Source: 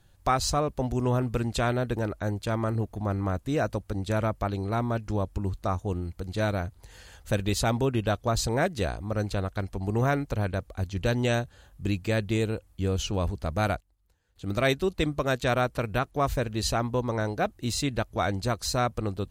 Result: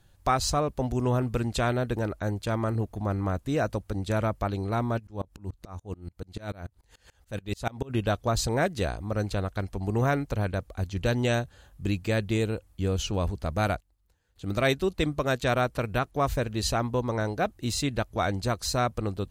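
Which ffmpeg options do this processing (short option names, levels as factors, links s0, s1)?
-filter_complex "[0:a]asplit=3[s0][s1][s2];[s0]afade=t=out:st=4.98:d=0.02[s3];[s1]aeval=exprs='val(0)*pow(10,-28*if(lt(mod(-6.9*n/s,1),2*abs(-6.9)/1000),1-mod(-6.9*n/s,1)/(2*abs(-6.9)/1000),(mod(-6.9*n/s,1)-2*abs(-6.9)/1000)/(1-2*abs(-6.9)/1000))/20)':c=same,afade=t=in:st=4.98:d=0.02,afade=t=out:st=7.89:d=0.02[s4];[s2]afade=t=in:st=7.89:d=0.02[s5];[s3][s4][s5]amix=inputs=3:normalize=0"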